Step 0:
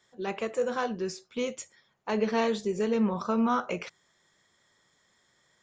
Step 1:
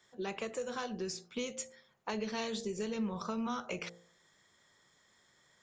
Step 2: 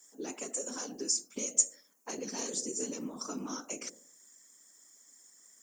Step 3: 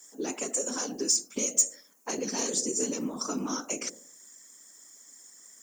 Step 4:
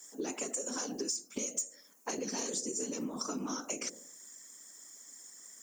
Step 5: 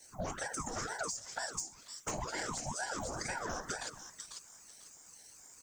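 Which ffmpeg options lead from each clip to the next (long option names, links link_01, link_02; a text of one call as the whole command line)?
ffmpeg -i in.wav -filter_complex "[0:a]bandreject=frequency=57.96:width_type=h:width=4,bandreject=frequency=115.92:width_type=h:width=4,bandreject=frequency=173.88:width_type=h:width=4,bandreject=frequency=231.84:width_type=h:width=4,bandreject=frequency=289.8:width_type=h:width=4,bandreject=frequency=347.76:width_type=h:width=4,bandreject=frequency=405.72:width_type=h:width=4,bandreject=frequency=463.68:width_type=h:width=4,bandreject=frequency=521.64:width_type=h:width=4,bandreject=frequency=579.6:width_type=h:width=4,bandreject=frequency=637.56:width_type=h:width=4,bandreject=frequency=695.52:width_type=h:width=4,bandreject=frequency=753.48:width_type=h:width=4,bandreject=frequency=811.44:width_type=h:width=4,bandreject=frequency=869.4:width_type=h:width=4,acrossover=split=130|3000[link_01][link_02][link_03];[link_02]acompressor=threshold=-36dB:ratio=6[link_04];[link_01][link_04][link_03]amix=inputs=3:normalize=0" out.wav
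ffmpeg -i in.wav -af "afftfilt=real='hypot(re,im)*cos(2*PI*random(0))':imag='hypot(re,im)*sin(2*PI*random(1))':win_size=512:overlap=0.75,aexciter=amount=13.9:drive=6.8:freq=5700,lowshelf=frequency=170:width_type=q:width=3:gain=-13.5" out.wav
ffmpeg -i in.wav -af "asoftclip=type=tanh:threshold=-21.5dB,volume=7dB" out.wav
ffmpeg -i in.wav -af "acompressor=threshold=-34dB:ratio=5" out.wav
ffmpeg -i in.wav -filter_complex "[0:a]acrossover=split=500|1000[link_01][link_02][link_03];[link_02]aeval=exprs='0.0266*sin(PI/2*3.16*val(0)/0.0266)':channel_layout=same[link_04];[link_03]aecho=1:1:496|992|1488:0.631|0.151|0.0363[link_05];[link_01][link_04][link_05]amix=inputs=3:normalize=0,aeval=exprs='val(0)*sin(2*PI*730*n/s+730*0.7/2.1*sin(2*PI*2.1*n/s))':channel_layout=same,volume=-2.5dB" out.wav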